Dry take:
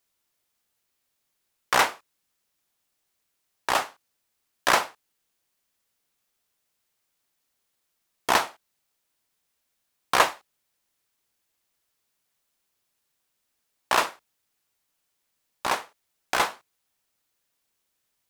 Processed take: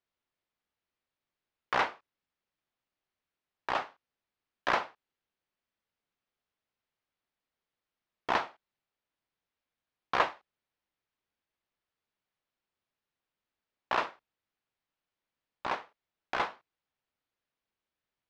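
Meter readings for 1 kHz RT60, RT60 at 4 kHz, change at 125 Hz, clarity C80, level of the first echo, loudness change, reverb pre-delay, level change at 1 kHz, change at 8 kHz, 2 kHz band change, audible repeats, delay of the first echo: no reverb, no reverb, -6.0 dB, no reverb, no echo, -8.0 dB, no reverb, -7.0 dB, -23.5 dB, -8.0 dB, no echo, no echo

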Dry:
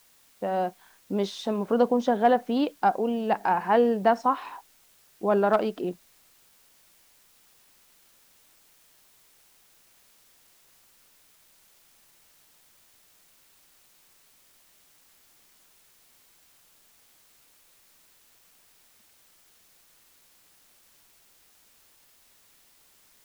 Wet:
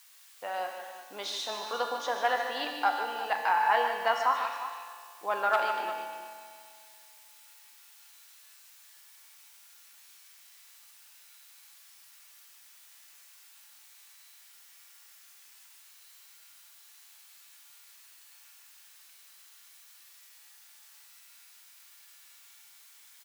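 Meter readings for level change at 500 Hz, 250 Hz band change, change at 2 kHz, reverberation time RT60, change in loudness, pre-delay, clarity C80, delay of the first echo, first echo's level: -10.0 dB, -22.5 dB, +4.0 dB, 2.1 s, -5.5 dB, 4 ms, 3.0 dB, 149 ms, -8.5 dB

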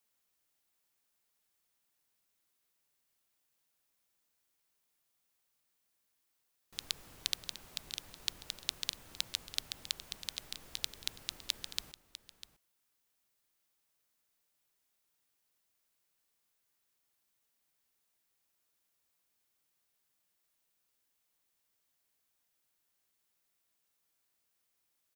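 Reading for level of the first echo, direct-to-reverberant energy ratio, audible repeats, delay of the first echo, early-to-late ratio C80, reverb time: -14.0 dB, no reverb, 1, 649 ms, no reverb, no reverb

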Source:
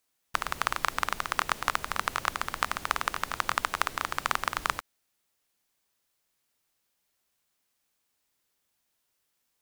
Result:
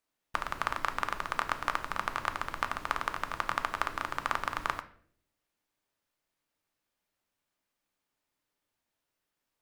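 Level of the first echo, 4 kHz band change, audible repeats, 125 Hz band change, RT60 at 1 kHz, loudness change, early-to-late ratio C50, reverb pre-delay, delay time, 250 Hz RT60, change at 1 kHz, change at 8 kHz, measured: no echo, -7.0 dB, no echo, -2.0 dB, 0.45 s, -3.5 dB, 14.5 dB, 3 ms, no echo, 0.80 s, -2.5 dB, -10.0 dB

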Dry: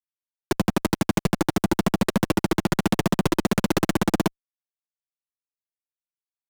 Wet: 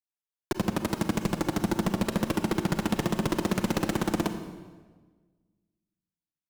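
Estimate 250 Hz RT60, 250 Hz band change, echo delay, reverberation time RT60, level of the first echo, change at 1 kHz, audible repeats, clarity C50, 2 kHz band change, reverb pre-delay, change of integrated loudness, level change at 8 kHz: 1.7 s, -5.0 dB, no echo, 1.4 s, no echo, -5.5 dB, no echo, 9.0 dB, -5.5 dB, 34 ms, -5.5 dB, -5.5 dB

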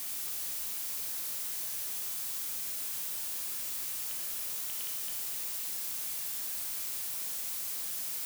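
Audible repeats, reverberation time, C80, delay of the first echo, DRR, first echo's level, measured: no echo, 1.3 s, 6.5 dB, no echo, 2.0 dB, no echo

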